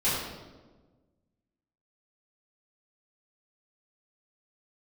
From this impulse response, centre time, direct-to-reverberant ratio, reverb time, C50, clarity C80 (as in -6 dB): 81 ms, -13.0 dB, 1.3 s, -0.5 dB, 2.0 dB